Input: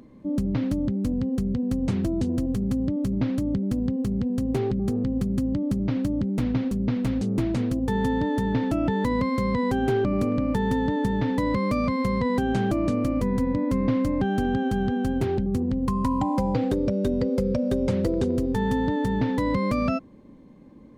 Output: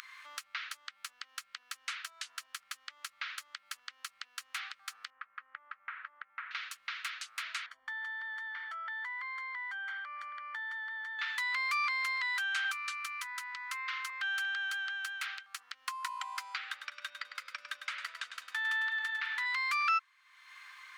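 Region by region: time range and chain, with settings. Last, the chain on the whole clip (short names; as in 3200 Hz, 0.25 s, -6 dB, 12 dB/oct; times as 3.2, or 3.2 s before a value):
5.1–6.51 LPF 1800 Hz 24 dB/oct + low shelf 300 Hz -8 dB
7.66–11.19 polynomial smoothing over 41 samples + bell 1300 Hz -8.5 dB 0.76 oct
12.64–14.1 Chebyshev band-stop 160–770 Hz, order 5 + bell 77 Hz +14.5 dB 1 oct + comb 3.9 ms, depth 47%
16.58–19.46 tone controls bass +7 dB, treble -8 dB + feedback echo 0.102 s, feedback 33%, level -9 dB
whole clip: elliptic high-pass 1300 Hz, stop band 70 dB; bell 1900 Hz +6.5 dB 2.7 oct; upward compressor, threshold -37 dBFS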